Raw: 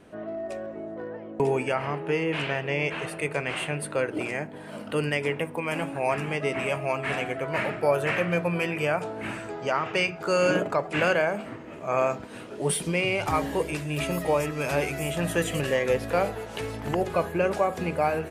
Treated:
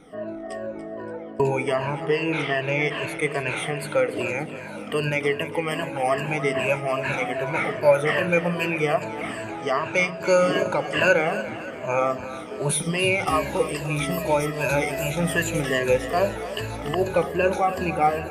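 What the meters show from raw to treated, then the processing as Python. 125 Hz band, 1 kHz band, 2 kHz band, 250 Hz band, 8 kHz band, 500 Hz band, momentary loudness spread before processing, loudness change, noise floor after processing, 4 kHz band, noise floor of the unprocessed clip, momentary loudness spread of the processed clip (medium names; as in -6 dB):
+2.5 dB, +4.0 dB, +4.0 dB, +2.5 dB, +3.5 dB, +3.5 dB, 10 LU, +3.5 dB, -35 dBFS, +3.0 dB, -41 dBFS, 10 LU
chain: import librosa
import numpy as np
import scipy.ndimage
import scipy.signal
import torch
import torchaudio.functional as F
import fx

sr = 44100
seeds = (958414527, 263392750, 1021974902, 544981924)

y = fx.spec_ripple(x, sr, per_octave=1.4, drift_hz=-2.5, depth_db=17)
y = fx.echo_split(y, sr, split_hz=480.0, low_ms=106, high_ms=287, feedback_pct=52, wet_db=-13)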